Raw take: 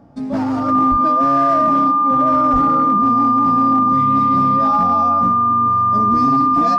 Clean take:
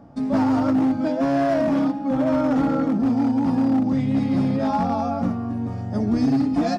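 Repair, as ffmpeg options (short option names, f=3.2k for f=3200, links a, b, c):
-filter_complex "[0:a]bandreject=f=1.2k:w=30,asplit=3[a][b][c];[a]afade=t=out:st=0.9:d=0.02[d];[b]highpass=f=140:w=0.5412,highpass=f=140:w=1.3066,afade=t=in:st=0.9:d=0.02,afade=t=out:st=1.02:d=0.02[e];[c]afade=t=in:st=1.02:d=0.02[f];[d][e][f]amix=inputs=3:normalize=0,asplit=3[g][h][i];[g]afade=t=out:st=2.52:d=0.02[j];[h]highpass=f=140:w=0.5412,highpass=f=140:w=1.3066,afade=t=in:st=2.52:d=0.02,afade=t=out:st=2.64:d=0.02[k];[i]afade=t=in:st=2.64:d=0.02[l];[j][k][l]amix=inputs=3:normalize=0"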